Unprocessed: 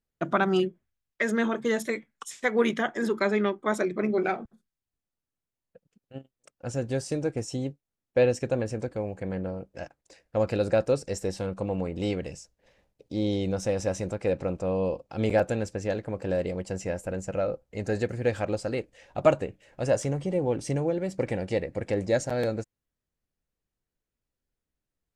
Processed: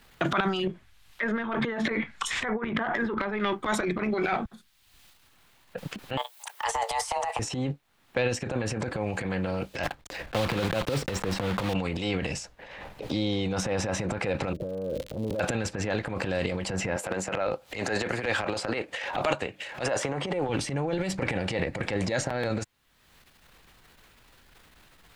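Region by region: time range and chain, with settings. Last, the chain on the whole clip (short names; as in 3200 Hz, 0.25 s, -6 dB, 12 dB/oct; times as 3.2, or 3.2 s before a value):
0.67–3.4 treble ducked by the level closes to 1500 Hz, closed at -24 dBFS + negative-ratio compressor -32 dBFS, ratio -0.5
6.17–7.39 RIAA curve recording + frequency shift +340 Hz
9.83–11.75 block floating point 3-bit + tilt -2.5 dB/oct
14.52–15.39 steep low-pass 610 Hz 96 dB/oct + compressor 5:1, threshold -39 dBFS + crackle 150/s -61 dBFS
16.96–20.49 HPF 290 Hz + upward compressor, threshold -42 dBFS
whole clip: band shelf 1800 Hz +9 dB 2.8 oct; transient shaper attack -10 dB, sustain +11 dB; three-band squash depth 100%; gain -3 dB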